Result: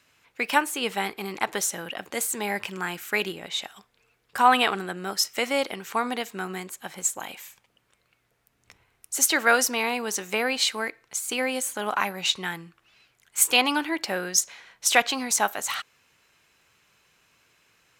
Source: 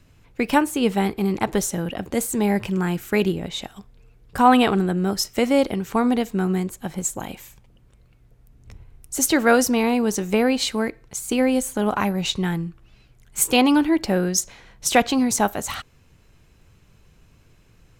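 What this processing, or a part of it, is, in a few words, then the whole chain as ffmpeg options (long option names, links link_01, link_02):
filter by subtraction: -filter_complex "[0:a]asplit=2[link_01][link_02];[link_02]lowpass=1700,volume=-1[link_03];[link_01][link_03]amix=inputs=2:normalize=0"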